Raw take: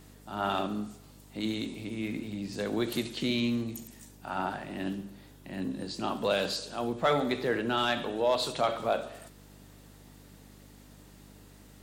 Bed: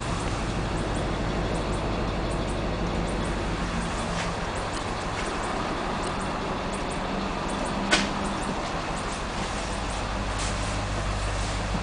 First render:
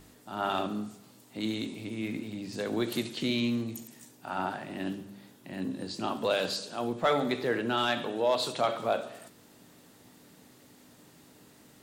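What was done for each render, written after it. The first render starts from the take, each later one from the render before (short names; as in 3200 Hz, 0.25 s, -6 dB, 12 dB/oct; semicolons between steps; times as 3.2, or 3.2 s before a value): de-hum 50 Hz, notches 4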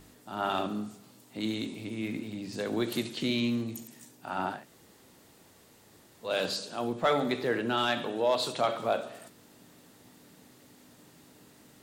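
4.59–6.29 room tone, crossfade 0.16 s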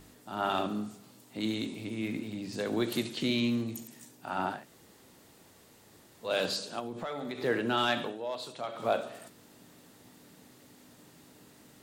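6.79–7.44 compressor, threshold -34 dBFS; 8.03–8.87 dip -10 dB, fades 0.15 s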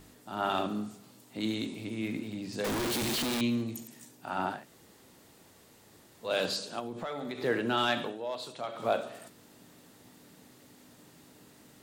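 2.64–3.41 infinite clipping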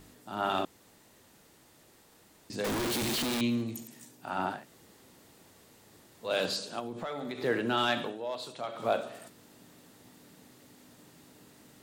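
0.65–2.5 room tone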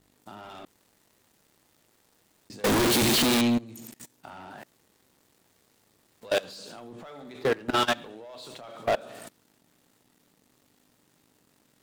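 sample leveller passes 3; level quantiser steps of 22 dB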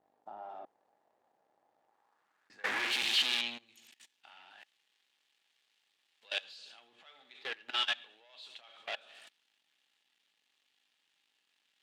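small resonant body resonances 810/1700 Hz, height 7 dB; band-pass sweep 700 Hz -> 3000 Hz, 1.74–3.08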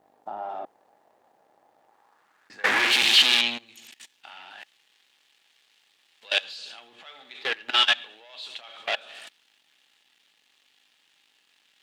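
gain +12 dB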